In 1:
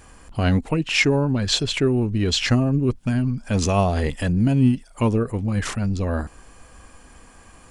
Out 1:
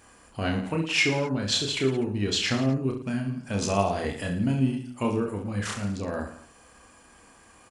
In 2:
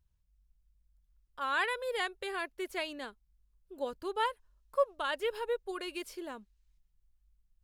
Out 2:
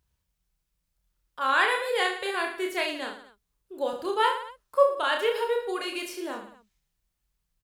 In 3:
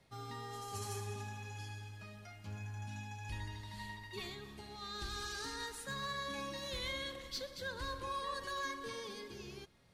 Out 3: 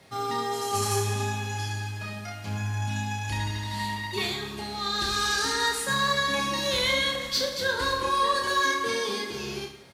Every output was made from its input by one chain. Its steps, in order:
HPF 190 Hz 6 dB/oct; on a send: reverse bouncing-ball echo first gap 30 ms, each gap 1.25×, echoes 5; on the sum: match loudness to -27 LUFS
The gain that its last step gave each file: -5.5, +6.5, +14.5 dB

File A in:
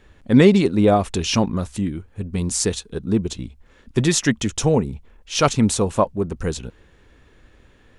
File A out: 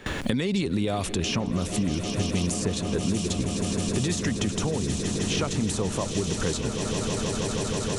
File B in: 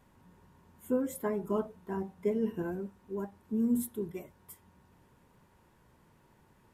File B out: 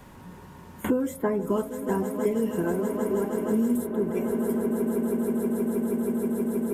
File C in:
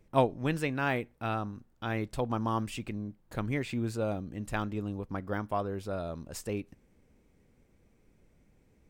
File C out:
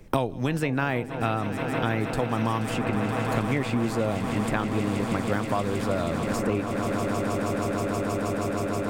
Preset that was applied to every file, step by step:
gate with hold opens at -43 dBFS; compressor, threshold -19 dBFS; limiter -20.5 dBFS; on a send: swelling echo 0.159 s, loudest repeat 8, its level -15 dB; on the sum: three-band squash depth 100%; match loudness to -27 LUFS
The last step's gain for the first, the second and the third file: +1.5, +7.0, +6.0 dB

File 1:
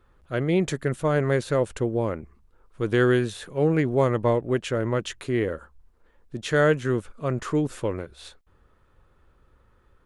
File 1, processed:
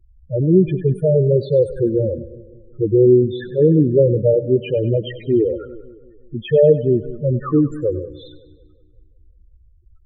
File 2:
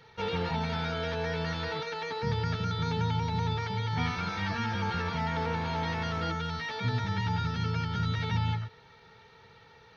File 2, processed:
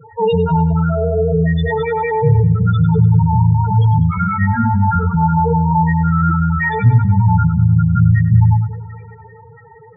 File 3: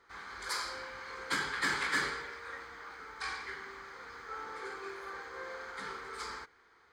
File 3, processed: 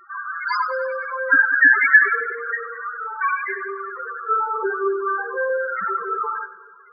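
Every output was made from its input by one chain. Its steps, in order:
loudest bins only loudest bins 4; split-band echo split 450 Hz, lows 0.182 s, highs 98 ms, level -15.5 dB; normalise peaks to -2 dBFS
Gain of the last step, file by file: +10.5, +20.5, +24.5 dB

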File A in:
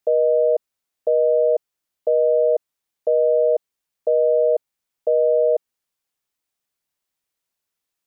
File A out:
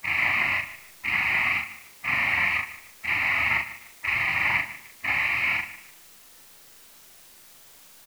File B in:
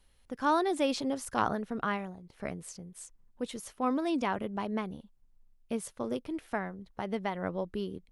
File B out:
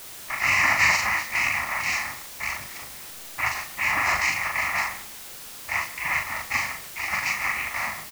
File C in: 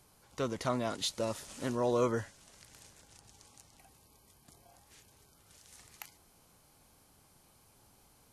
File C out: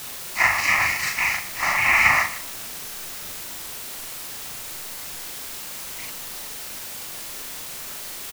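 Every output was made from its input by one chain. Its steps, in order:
spectral dilation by 60 ms; noise vocoder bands 3; spectral gate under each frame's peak -10 dB weak; bell 1800 Hz +12.5 dB 1.3 oct; backlash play -42.5 dBFS; fixed phaser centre 2300 Hz, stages 8; de-hum 227.8 Hz, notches 8; requantised 8-bit, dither triangular; doubler 40 ms -4.5 dB; lo-fi delay 0.15 s, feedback 35%, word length 7-bit, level -15 dB; match loudness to -24 LUFS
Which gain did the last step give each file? -4.5, +6.5, +12.0 dB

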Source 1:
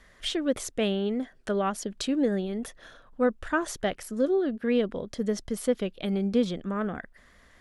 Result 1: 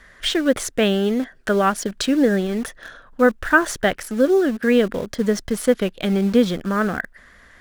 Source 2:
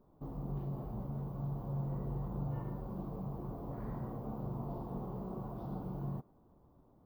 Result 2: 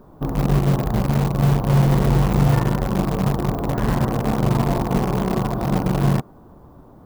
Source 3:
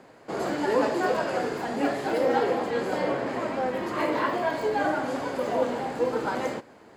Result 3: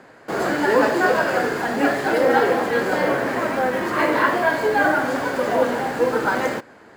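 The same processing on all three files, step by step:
bell 1600 Hz +7 dB 0.65 oct; in parallel at -9.5 dB: bit-crush 6-bit; on the sum: match loudness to -20 LUFS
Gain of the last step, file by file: +5.5, +19.0, +3.5 dB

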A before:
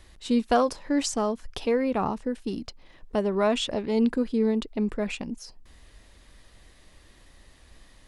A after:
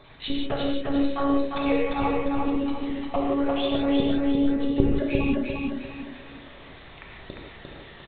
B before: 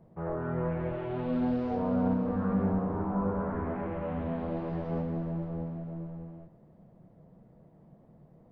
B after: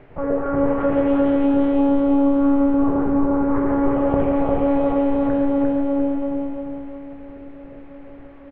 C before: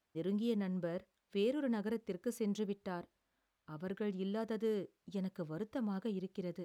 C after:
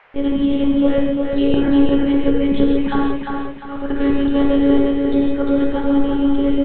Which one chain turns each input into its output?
random spectral dropouts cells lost 27%; elliptic high-pass 190 Hz; dynamic EQ 410 Hz, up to +5 dB, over -47 dBFS, Q 5.3; compressor 10:1, threshold -37 dBFS; monotone LPC vocoder at 8 kHz 280 Hz; feedback echo 0.35 s, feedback 38%, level -3.5 dB; non-linear reverb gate 0.2 s flat, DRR -1.5 dB; band noise 460–2300 Hz -73 dBFS; normalise peaks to -3 dBFS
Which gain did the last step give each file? +11.0, +15.0, +21.5 dB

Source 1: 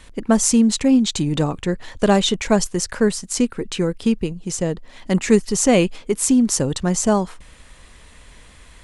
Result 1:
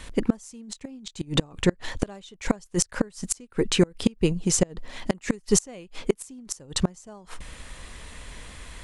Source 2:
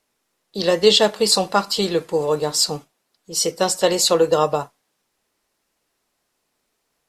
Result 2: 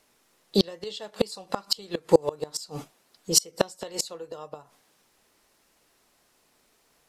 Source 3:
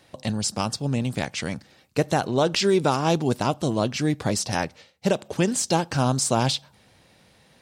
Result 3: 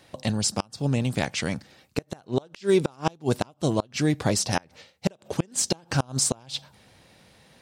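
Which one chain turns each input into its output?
dynamic EQ 230 Hz, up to -3 dB, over -27 dBFS, Q 2; flipped gate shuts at -11 dBFS, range -30 dB; match loudness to -27 LUFS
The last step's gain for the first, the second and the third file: +3.5, +7.0, +1.5 dB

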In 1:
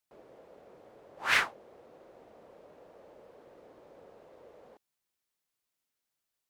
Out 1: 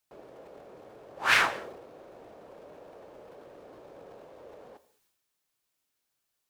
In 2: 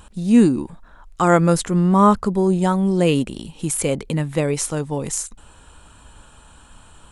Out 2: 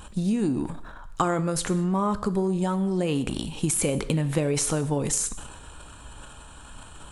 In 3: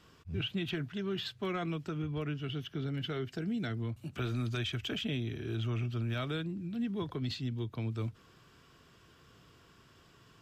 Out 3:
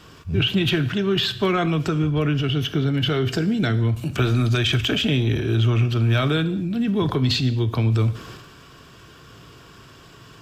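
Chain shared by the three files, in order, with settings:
notch 2000 Hz, Q 23; compressor 12:1, threshold -22 dBFS; transient shaper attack +2 dB, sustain +8 dB; non-linear reverb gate 0.25 s falling, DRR 11.5 dB; normalise peaks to -9 dBFS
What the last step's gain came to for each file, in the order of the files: +4.5, +0.5, +13.5 dB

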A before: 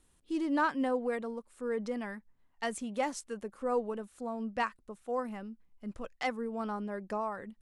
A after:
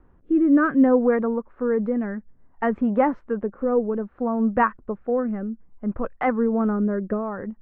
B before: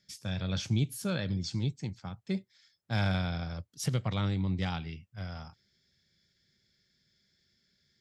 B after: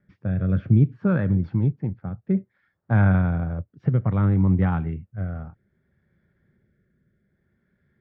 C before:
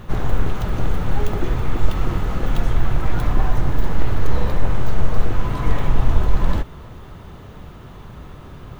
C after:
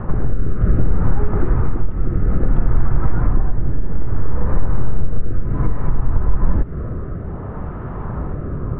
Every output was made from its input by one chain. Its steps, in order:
LPF 1500 Hz 24 dB/oct; dynamic EQ 700 Hz, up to -6 dB, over -43 dBFS, Q 1.1; compressor 6:1, threshold -22 dBFS; rotary speaker horn 0.6 Hz; match loudness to -23 LUFS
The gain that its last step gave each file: +17.0, +13.0, +14.0 dB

